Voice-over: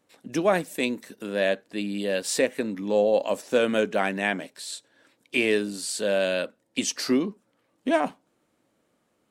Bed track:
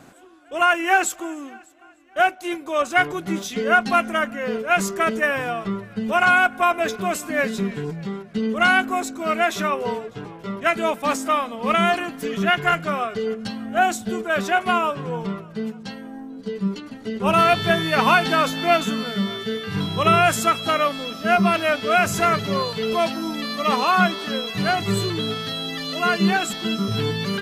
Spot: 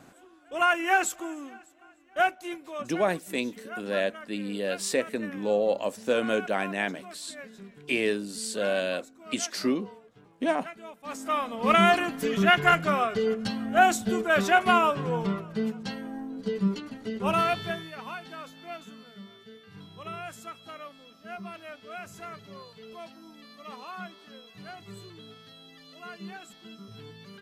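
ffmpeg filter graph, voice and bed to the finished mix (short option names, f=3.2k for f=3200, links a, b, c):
-filter_complex "[0:a]adelay=2550,volume=-3.5dB[a];[1:a]volume=15.5dB,afade=t=out:st=2.2:d=0.75:silence=0.149624,afade=t=in:st=11.03:d=0.69:silence=0.0891251,afade=t=out:st=16.51:d=1.44:silence=0.0841395[b];[a][b]amix=inputs=2:normalize=0"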